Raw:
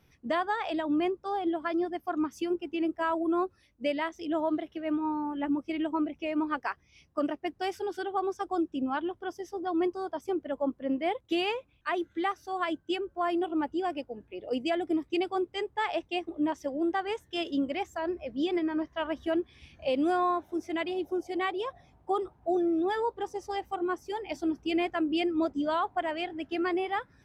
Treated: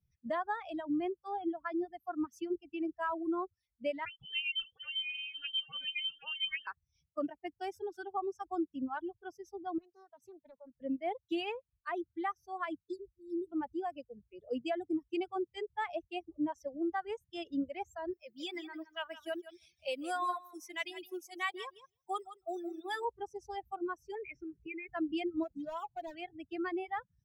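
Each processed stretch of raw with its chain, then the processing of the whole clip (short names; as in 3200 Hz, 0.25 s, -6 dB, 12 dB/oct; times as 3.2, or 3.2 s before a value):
4.05–6.67 dispersion lows, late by 62 ms, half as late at 550 Hz + echo 0.771 s -11 dB + inverted band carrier 3400 Hz
9.78–10.75 HPF 120 Hz + compressor 3:1, threshold -42 dBFS + Doppler distortion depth 0.54 ms
12.85–13.52 envelope flanger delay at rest 2.1 ms, full sweep at -24.5 dBFS + brick-wall FIR band-stop 540–3500 Hz
18.13–23.05 tilt +4 dB/oct + feedback echo 0.162 s, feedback 16%, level -7 dB
24.15–24.89 EQ curve 170 Hz 0 dB, 240 Hz -8 dB, 440 Hz +11 dB, 680 Hz -15 dB, 2400 Hz +14 dB, 3700 Hz -23 dB, 5500 Hz -7 dB, 8400 Hz -21 dB + compressor 5:1, threshold -32 dBFS
25.43–26.15 median filter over 25 samples + comb 6 ms, depth 50% + compressor 2:1, threshold -31 dBFS
whole clip: per-bin expansion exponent 1.5; reverb removal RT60 0.69 s; dynamic EQ 4400 Hz, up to -5 dB, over -59 dBFS, Q 1.8; gain -3.5 dB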